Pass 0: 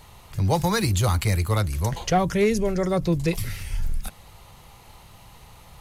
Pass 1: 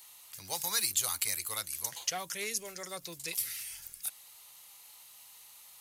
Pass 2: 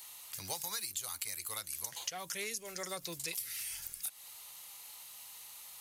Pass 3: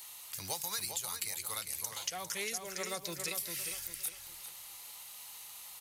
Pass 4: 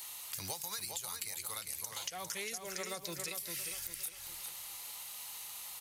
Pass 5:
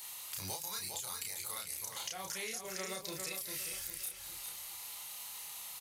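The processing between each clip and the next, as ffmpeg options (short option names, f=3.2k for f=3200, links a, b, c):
-af "aderivative,volume=2dB"
-af "acompressor=threshold=-39dB:ratio=12,volume=3.5dB"
-filter_complex "[0:a]asplit=2[a][b];[b]adelay=402,lowpass=f=4.9k:p=1,volume=-6dB,asplit=2[c][d];[d]adelay=402,lowpass=f=4.9k:p=1,volume=0.33,asplit=2[e][f];[f]adelay=402,lowpass=f=4.9k:p=1,volume=0.33,asplit=2[g][h];[h]adelay=402,lowpass=f=4.9k:p=1,volume=0.33[i];[a][c][e][g][i]amix=inputs=5:normalize=0,volume=1.5dB"
-af "acompressor=threshold=-40dB:ratio=6,volume=3dB"
-filter_complex "[0:a]asplit=2[a][b];[b]adelay=32,volume=-2.5dB[c];[a][c]amix=inputs=2:normalize=0,volume=-2dB"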